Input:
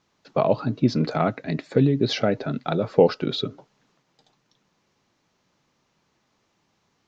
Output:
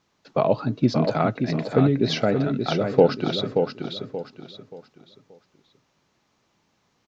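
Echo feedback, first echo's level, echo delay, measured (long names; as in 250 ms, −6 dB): 32%, −6.0 dB, 579 ms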